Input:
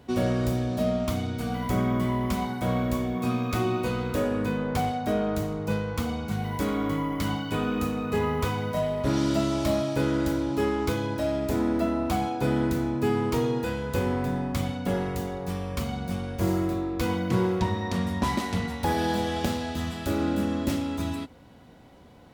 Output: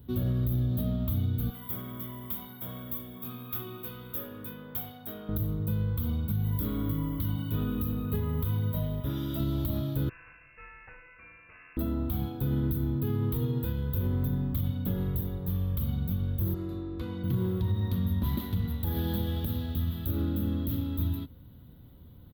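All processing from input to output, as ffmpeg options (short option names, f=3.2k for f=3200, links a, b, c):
-filter_complex "[0:a]asettb=1/sr,asplit=3[a][b][c];[a]atrim=end=1.504[d];[b]atrim=start=1.5:end=5.29,asetpts=PTS-STARTPTS,afade=t=in:d=0.004:c=qsin,afade=t=out:st=3.786:d=0.004:c=qsin,highpass=f=1k:p=1,bandreject=f=4.1k:w=7.4[e];[c]atrim=start=5.286[f];[d][e]acrossfade=d=0.004:c1=hsin:c2=qsin[g];[g][f]acrossfade=d=0.004:c1=qsin:c2=hsin,asettb=1/sr,asplit=3[h][i][j];[h]atrim=end=9.004[k];[i]atrim=start=9:end=9.4,asetpts=PTS-STARTPTS,afade=t=in:d=0.004:c=qsin,afade=t=out:st=0.396:d=0.004:c=qsin,asuperstop=centerf=4300:order=8:qfactor=7.5,lowshelf=f=370:g=-8.5[l];[j]atrim=start=9.396[m];[k][l]acrossfade=d=0.004:c1=hsin:c2=qsin[n];[n][m]acrossfade=d=0.004:c1=qsin:c2=hsin,asettb=1/sr,asplit=3[o][p][q];[o]atrim=end=10.094[r];[p]atrim=start=10.09:end=11.77,asetpts=PTS-STARTPTS,afade=t=in:d=0.004:c=qsin,afade=t=out:st=1.676:d=0.004:c=qsin,highpass=1k,lowpass=f=2.6k:t=q:w=0.5098,lowpass=f=2.6k:t=q:w=0.6013,lowpass=f=2.6k:t=q:w=0.9,lowpass=f=2.6k:t=q:w=2.563,afreqshift=-3000[s];[q]atrim=start=11.766[t];[r][s]acrossfade=d=0.004:c1=hsin:c2=qsin[u];[u][t]acrossfade=d=0.004:c1=qsin:c2=hsin,asettb=1/sr,asplit=3[v][w][x];[v]atrim=end=16.544[y];[w]atrim=start=16.54:end=17.24,asetpts=PTS-STARTPTS,afade=t=in:d=0.004:c=qsin,afade=t=out:st=0.696:d=0.004:c=qsin,lowpass=f=8.8k:w=0.5412,lowpass=f=8.8k:w=1.3066,bandreject=f=3.3k:w=12,acrossover=split=220|3700[z][aa][ab];[z]acompressor=threshold=-44dB:ratio=4[ac];[aa]acompressor=threshold=-28dB:ratio=4[ad];[ab]acompressor=threshold=-49dB:ratio=4[ae];[ac][ad][ae]amix=inputs=3:normalize=0[af];[x]atrim=start=17.236[ag];[y][af]acrossfade=d=0.004:c1=hsin:c2=qsin[ah];[ah][ag]acrossfade=d=0.004:c1=qsin:c2=hsin,firequalizer=gain_entry='entry(110,0);entry(200,-9);entry(740,-24);entry(1200,-17);entry(2400,-24);entry(3500,-10);entry(5400,-29);entry(8700,-28);entry(13000,7)':delay=0.05:min_phase=1,alimiter=level_in=3dB:limit=-24dB:level=0:latency=1:release=71,volume=-3dB,volume=6.5dB"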